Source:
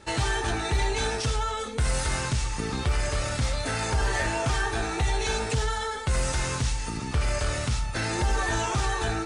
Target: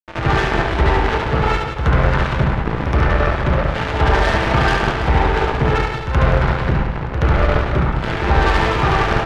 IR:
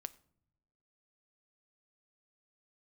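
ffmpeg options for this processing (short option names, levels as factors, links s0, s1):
-filter_complex "[0:a]lowpass=f=1700:w=0.5412,lowpass=f=1700:w=1.3066,acrusher=bits=3:mix=0:aa=0.5,aecho=1:1:70|175|332.5|568.8|923.1:0.631|0.398|0.251|0.158|0.1,asplit=2[s0][s1];[1:a]atrim=start_sample=2205,adelay=75[s2];[s1][s2]afir=irnorm=-1:irlink=0,volume=4.47[s3];[s0][s3]amix=inputs=2:normalize=0"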